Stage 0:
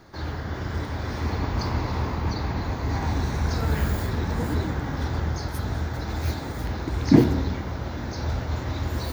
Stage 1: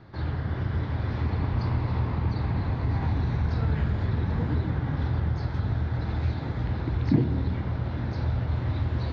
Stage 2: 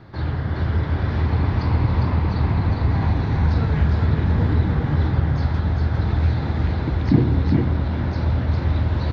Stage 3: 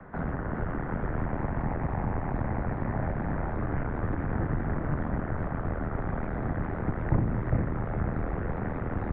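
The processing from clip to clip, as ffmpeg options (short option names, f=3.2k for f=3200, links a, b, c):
-af "lowpass=f=4k:w=0.5412,lowpass=f=4k:w=1.3066,equalizer=f=120:t=o:w=1.3:g=10,acompressor=threshold=-21dB:ratio=2,volume=-3dB"
-af "aecho=1:1:405:0.668,volume=5.5dB"
-filter_complex "[0:a]aeval=exprs='0.631*(cos(1*acos(clip(val(0)/0.631,-1,1)))-cos(1*PI/2))+0.141*(cos(6*acos(clip(val(0)/0.631,-1,1)))-cos(6*PI/2))':c=same,acrossover=split=380|1100[a][b][c];[a]acompressor=threshold=-18dB:ratio=4[d];[b]acompressor=threshold=-39dB:ratio=4[e];[c]acompressor=threshold=-44dB:ratio=4[f];[d][e][f]amix=inputs=3:normalize=0,highpass=f=200:t=q:w=0.5412,highpass=f=200:t=q:w=1.307,lowpass=f=2.2k:t=q:w=0.5176,lowpass=f=2.2k:t=q:w=0.7071,lowpass=f=2.2k:t=q:w=1.932,afreqshift=-150,volume=2.5dB"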